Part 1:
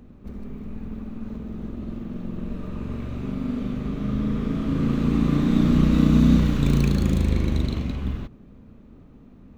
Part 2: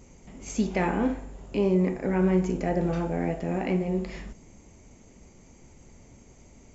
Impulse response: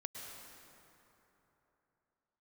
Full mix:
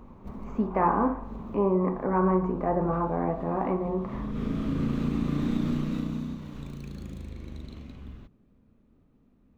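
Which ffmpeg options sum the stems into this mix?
-filter_complex "[0:a]acompressor=threshold=0.112:ratio=6,volume=0.668,afade=t=out:st=5.72:d=0.67:silence=0.281838[s0];[1:a]lowpass=f=1100:t=q:w=7.1,volume=0.841,asplit=2[s1][s2];[s2]apad=whole_len=422392[s3];[s0][s3]sidechaincompress=threshold=0.00708:ratio=5:attack=21:release=139[s4];[s4][s1]amix=inputs=2:normalize=0,bandreject=f=60:t=h:w=6,bandreject=f=120:t=h:w=6,bandreject=f=180:t=h:w=6"

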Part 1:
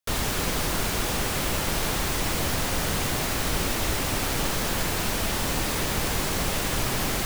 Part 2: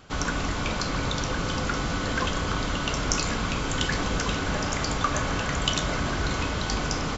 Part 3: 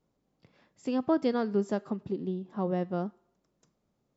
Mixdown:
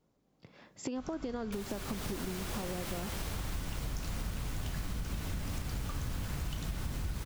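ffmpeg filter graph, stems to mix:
-filter_complex "[0:a]alimiter=limit=0.133:level=0:latency=1:release=319,dynaudnorm=f=410:g=3:m=2,adelay=1450,volume=0.266[s0];[1:a]asubboost=boost=10:cutoff=180,adelay=850,volume=0.266[s1];[2:a]dynaudnorm=f=100:g=13:m=3.16,alimiter=limit=0.224:level=0:latency=1,acompressor=threshold=0.0178:ratio=3,volume=1.26,asplit=2[s2][s3];[s3]apad=whole_len=353790[s4];[s1][s4]sidechaincompress=threshold=0.0141:ratio=6:attack=16:release=685[s5];[s0][s5][s2]amix=inputs=3:normalize=0,acompressor=threshold=0.02:ratio=6"

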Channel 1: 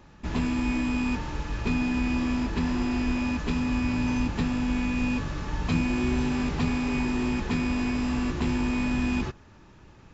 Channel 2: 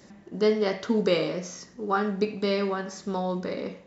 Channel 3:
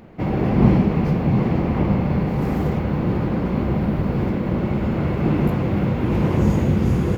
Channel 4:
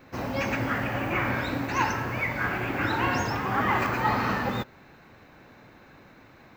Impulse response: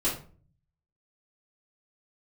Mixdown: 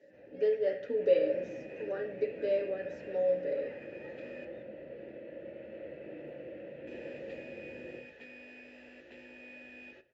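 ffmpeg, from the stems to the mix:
-filter_complex "[0:a]lowshelf=f=340:g=-10,adelay=700,volume=0.531,asplit=3[s0][s1][s2];[s0]atrim=end=4.45,asetpts=PTS-STARTPTS,afade=t=out:st=4.446:d=0.004:c=hsin[s3];[s1]atrim=start=4.45:end=6.87,asetpts=PTS-STARTPTS,volume=0[s4];[s2]atrim=start=6.87,asetpts=PTS-STARTPTS,afade=t=in:d=0.004:c=hsin[s5];[s3][s4][s5]concat=n=3:v=0:a=1,asplit=2[s6][s7];[s7]volume=0.0944[s8];[1:a]equalizer=f=290:w=0.36:g=7.5,aecho=1:1:6.9:0.83,volume=0.531,asplit=3[s9][s10][s11];[s10]volume=0.119[s12];[2:a]lowshelf=f=340:g=-8.5,asoftclip=type=tanh:threshold=0.106,adelay=800,volume=0.188,asplit=2[s13][s14];[s14]volume=0.668[s15];[3:a]lowshelf=f=200:g=11.5,volume=0.168[s16];[s11]apad=whole_len=477950[s17];[s6][s17]sidechaincompress=threshold=0.0112:ratio=8:attack=16:release=636[s18];[4:a]atrim=start_sample=2205[s19];[s8][s12][s15]amix=inputs=3:normalize=0[s20];[s20][s19]afir=irnorm=-1:irlink=0[s21];[s18][s9][s13][s16][s21]amix=inputs=5:normalize=0,asplit=3[s22][s23][s24];[s22]bandpass=f=530:t=q:w=8,volume=1[s25];[s23]bandpass=f=1840:t=q:w=8,volume=0.501[s26];[s24]bandpass=f=2480:t=q:w=8,volume=0.355[s27];[s25][s26][s27]amix=inputs=3:normalize=0,lowshelf=f=110:g=5.5"

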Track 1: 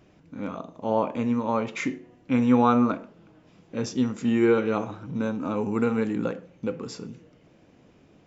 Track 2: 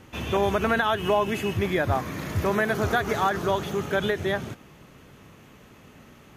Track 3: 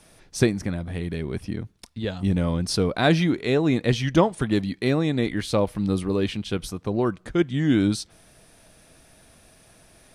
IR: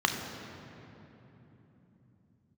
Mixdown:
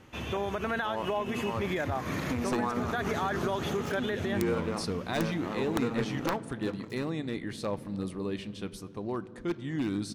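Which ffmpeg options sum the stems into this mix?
-filter_complex "[0:a]lowshelf=f=67:g=-10.5,aeval=exprs='sgn(val(0))*max(abs(val(0))-0.02,0)':c=same,volume=0.316,asplit=3[s0][s1][s2];[s1]volume=0.0841[s3];[1:a]highshelf=f=11000:g=-9,volume=0.631[s4];[2:a]aeval=exprs='0.237*(abs(mod(val(0)/0.237+3,4)-2)-1)':c=same,adelay=2100,volume=0.282,asplit=2[s5][s6];[s6]volume=0.0794[s7];[s2]apad=whole_len=280741[s8];[s4][s8]sidechaincompress=threshold=0.0158:ratio=8:attack=16:release=166[s9];[s0][s9]amix=inputs=2:normalize=0,dynaudnorm=f=210:g=13:m=2.11,alimiter=limit=0.0841:level=0:latency=1:release=149,volume=1[s10];[3:a]atrim=start_sample=2205[s11];[s3][s7]amix=inputs=2:normalize=0[s12];[s12][s11]afir=irnorm=-1:irlink=0[s13];[s5][s10][s13]amix=inputs=3:normalize=0,lowshelf=f=270:g=-2,aeval=exprs='(mod(7.94*val(0)+1,2)-1)/7.94':c=same"

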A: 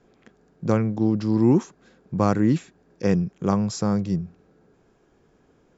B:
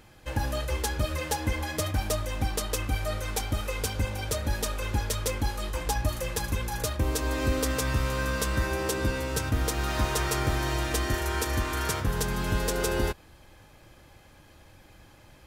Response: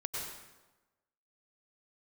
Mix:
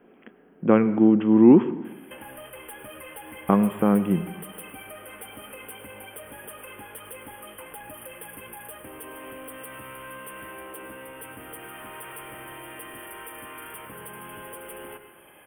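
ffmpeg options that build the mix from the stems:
-filter_complex "[0:a]lowshelf=f=160:t=q:w=1.5:g=-12,volume=1.26,asplit=3[s0][s1][s2];[s0]atrim=end=1.93,asetpts=PTS-STARTPTS,afade=t=out:st=1.926:d=0.004:c=hsin[s3];[s1]atrim=start=1.93:end=3.49,asetpts=PTS-STARTPTS,volume=0[s4];[s2]atrim=start=3.49,asetpts=PTS-STARTPTS,afade=t=in:d=0.004:c=hsin[s5];[s3][s4][s5]concat=n=3:v=0:a=1,asplit=2[s6][s7];[s7]volume=0.2[s8];[1:a]highpass=250,asoftclip=type=hard:threshold=0.0282,acompressor=threshold=0.00562:ratio=6,adelay=1850,volume=1.06,asplit=2[s9][s10];[s10]volume=0.473[s11];[2:a]atrim=start_sample=2205[s12];[s8][s11]amix=inputs=2:normalize=0[s13];[s13][s12]afir=irnorm=-1:irlink=0[s14];[s6][s9][s14]amix=inputs=3:normalize=0,asuperstop=centerf=5400:order=20:qfactor=1,highshelf=f=4000:g=7.5"

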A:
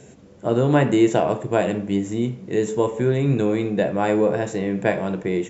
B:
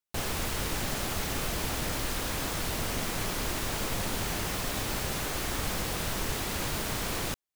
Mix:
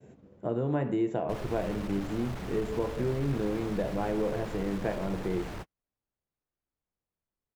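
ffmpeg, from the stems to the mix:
-filter_complex "[0:a]agate=range=0.0224:threshold=0.00708:ratio=3:detection=peak,acompressor=threshold=0.0447:ratio=2,volume=0.631,asplit=2[s0][s1];[1:a]asoftclip=type=tanh:threshold=0.0178,adelay=1150,volume=1.19[s2];[s1]apad=whole_len=383998[s3];[s2][s3]sidechaingate=range=0.00178:threshold=0.00158:ratio=16:detection=peak[s4];[s0][s4]amix=inputs=2:normalize=0,lowpass=f=1200:p=1"

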